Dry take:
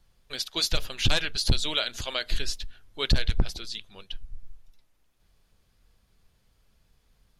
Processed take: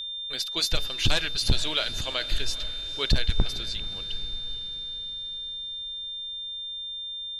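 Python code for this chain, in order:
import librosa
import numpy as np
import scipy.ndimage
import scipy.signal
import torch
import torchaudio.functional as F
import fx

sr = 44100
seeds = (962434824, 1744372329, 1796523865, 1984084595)

y = x + 10.0 ** (-32.0 / 20.0) * np.sin(2.0 * np.pi * 3600.0 * np.arange(len(x)) / sr)
y = fx.echo_diffused(y, sr, ms=472, feedback_pct=57, wet_db=-15.0)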